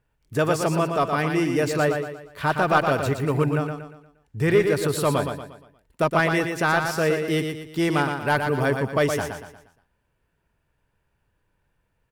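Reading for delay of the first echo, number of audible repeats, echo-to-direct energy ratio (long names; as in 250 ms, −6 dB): 118 ms, 4, −5.0 dB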